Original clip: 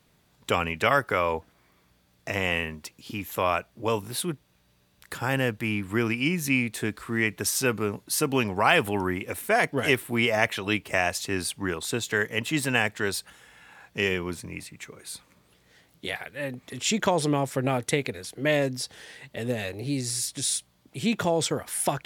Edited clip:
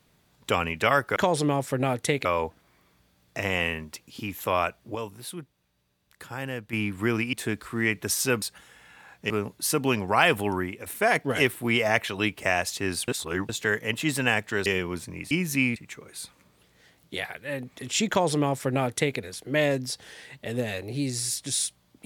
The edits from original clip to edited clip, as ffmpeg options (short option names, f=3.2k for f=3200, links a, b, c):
-filter_complex "[0:a]asplit=14[a][b][c][d][e][f][g][h][i][j][k][l][m][n];[a]atrim=end=1.162[o];[b]atrim=start=16.998:end=18.092[p];[c]atrim=start=1.158:end=3.862[q];[d]atrim=start=3.858:end=5.642,asetpts=PTS-STARTPTS,volume=-8dB[r];[e]atrim=start=5.638:end=6.242[s];[f]atrim=start=6.688:end=7.782[t];[g]atrim=start=13.138:end=14.022[u];[h]atrim=start=7.778:end=9.34,asetpts=PTS-STARTPTS,afade=t=out:st=1.242:d=0.32:silence=0.375837[v];[i]atrim=start=9.34:end=11.562,asetpts=PTS-STARTPTS,afade=t=in:d=0.004:c=hsin:silence=0.375837[w];[j]atrim=start=11.558:end=11.972,asetpts=PTS-STARTPTS,areverse[x];[k]atrim=start=11.968:end=13.142[y];[l]atrim=start=14.018:end=14.672[z];[m]atrim=start=6.238:end=6.692[aa];[n]atrim=start=14.668[ab];[o][p]acrossfade=d=0.004:c1=hsin:c2=hsin[ac];[ac][q]acrossfade=d=0.004:c1=hsin:c2=hsin[ad];[ad][r]acrossfade=d=0.004:c1=hsin:c2=hsin[ae];[ae][s]acrossfade=d=0.004:c1=hsin:c2=hsin[af];[af][t]acrossfade=d=0.004:c1=hsin:c2=hsin[ag];[ag][u]acrossfade=d=0.004:c1=hsin:c2=hsin[ah];[v][w]concat=n=2:v=0:a=1[ai];[ah][ai]acrossfade=d=0.004:c1=hsin:c2=hsin[aj];[aj][x]acrossfade=d=0.004:c1=hsin:c2=hsin[ak];[ak][y]acrossfade=d=0.004:c1=hsin:c2=hsin[al];[al][z]acrossfade=d=0.004:c1=hsin:c2=hsin[am];[am][aa]acrossfade=d=0.004:c1=hsin:c2=hsin[an];[an][ab]acrossfade=d=0.004:c1=hsin:c2=hsin"